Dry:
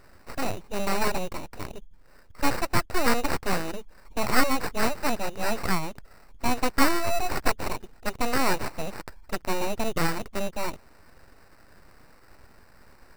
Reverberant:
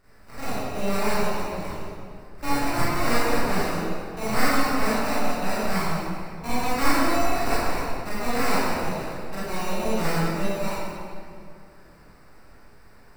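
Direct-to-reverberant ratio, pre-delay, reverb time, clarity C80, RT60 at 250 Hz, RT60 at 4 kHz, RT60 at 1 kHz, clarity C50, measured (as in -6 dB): -11.0 dB, 26 ms, 2.3 s, -2.5 dB, 2.8 s, 1.6 s, 2.2 s, -5.5 dB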